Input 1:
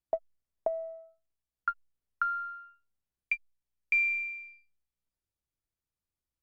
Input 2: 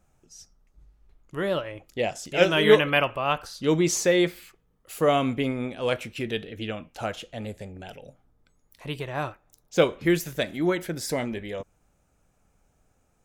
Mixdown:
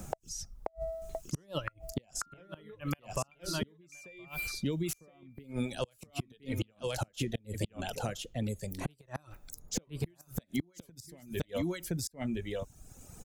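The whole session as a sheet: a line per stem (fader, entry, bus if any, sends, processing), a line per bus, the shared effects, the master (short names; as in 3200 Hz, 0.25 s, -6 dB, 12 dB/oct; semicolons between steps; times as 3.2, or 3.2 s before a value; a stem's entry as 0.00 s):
+1.5 dB, 0.00 s, no send, echo send -13.5 dB, notch 1000 Hz, Q 18
-1.5 dB, 0.00 s, no send, echo send -6 dB, compressor 5:1, threshold -28 dBFS, peak gain reduction 15.5 dB; reverb removal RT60 1.6 s; low shelf 350 Hz +11.5 dB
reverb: off
echo: echo 1.018 s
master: tone controls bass +2 dB, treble +12 dB; flipped gate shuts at -19 dBFS, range -36 dB; three-band squash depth 70%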